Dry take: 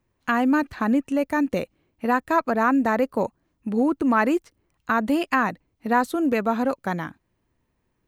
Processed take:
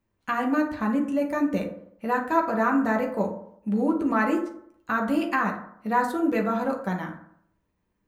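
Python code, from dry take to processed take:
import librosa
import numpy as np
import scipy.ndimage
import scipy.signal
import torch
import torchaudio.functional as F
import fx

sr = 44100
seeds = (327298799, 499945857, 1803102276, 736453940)

y = fx.rev_fdn(x, sr, rt60_s=0.68, lf_ratio=0.95, hf_ratio=0.45, size_ms=30.0, drr_db=0.5)
y = y * 10.0 ** (-6.0 / 20.0)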